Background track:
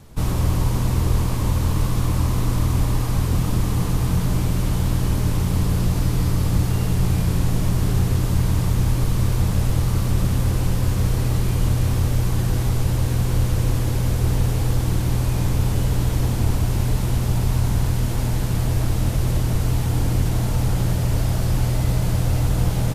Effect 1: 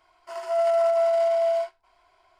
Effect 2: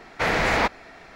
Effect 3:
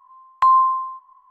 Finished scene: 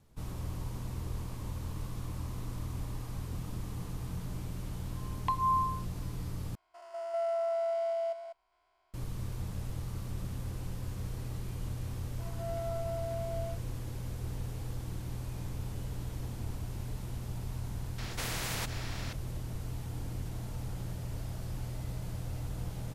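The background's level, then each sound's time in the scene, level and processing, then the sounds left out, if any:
background track -18.5 dB
4.86 s: add 3 -7 dB + barber-pole phaser -1.9 Hz
6.55 s: replace with 1 -10.5 dB + spectrogram pixelated in time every 200 ms
11.90 s: add 1 -17 dB
17.98 s: add 2 -16 dB + spectrum-flattening compressor 4:1

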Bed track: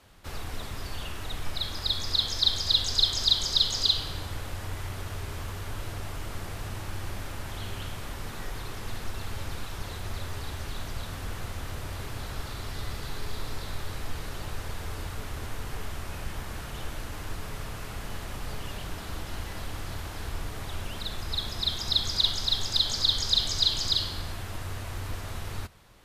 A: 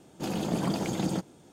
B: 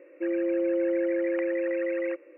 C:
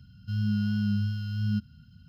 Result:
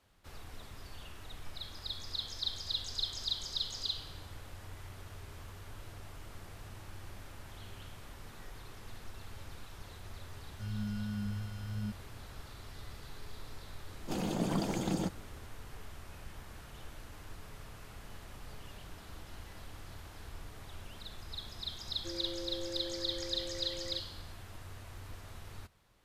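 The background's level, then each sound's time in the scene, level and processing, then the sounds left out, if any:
bed track -12.5 dB
10.32 s: add C -10.5 dB
13.88 s: add A -4 dB
21.84 s: add B -16 dB

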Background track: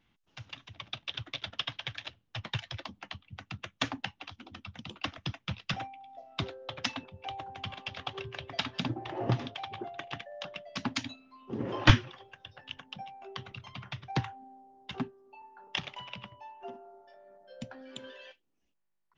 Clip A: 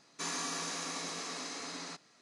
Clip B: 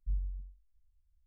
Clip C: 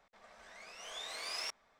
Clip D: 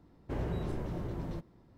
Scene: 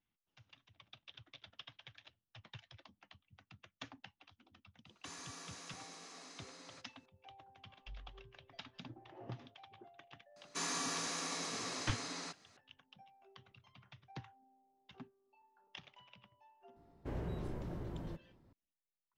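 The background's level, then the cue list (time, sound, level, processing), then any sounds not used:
background track -18 dB
4.85 s: add A -13.5 dB
7.80 s: add B -17.5 dB
10.36 s: add A -1.5 dB
16.76 s: add D -6 dB
not used: C

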